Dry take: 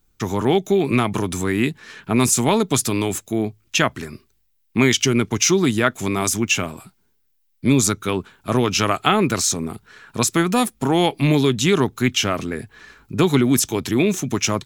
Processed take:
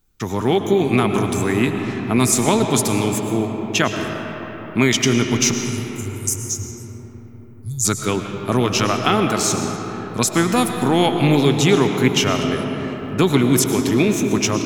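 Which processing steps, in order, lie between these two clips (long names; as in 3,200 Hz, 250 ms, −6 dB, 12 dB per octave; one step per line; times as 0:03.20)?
0:05.51–0:07.85: elliptic band-stop filter 110–6,100 Hz, stop band 40 dB
automatic gain control gain up to 3 dB
convolution reverb RT60 4.7 s, pre-delay 70 ms, DRR 4 dB
level −1 dB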